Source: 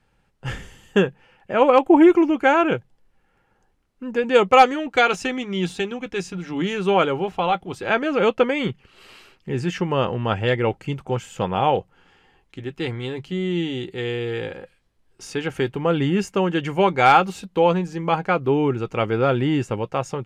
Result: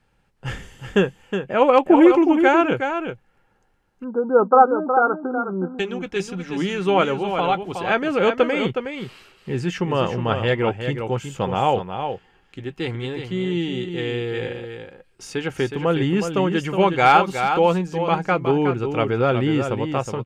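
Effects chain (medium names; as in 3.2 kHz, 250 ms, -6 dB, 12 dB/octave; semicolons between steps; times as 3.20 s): 4.04–5.79 s: brick-wall FIR band-pass 170–1600 Hz; on a send: delay 366 ms -7.5 dB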